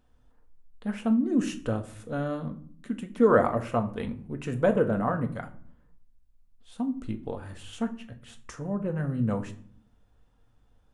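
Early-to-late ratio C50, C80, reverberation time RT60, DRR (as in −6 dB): 15.0 dB, 19.0 dB, 0.55 s, 5.0 dB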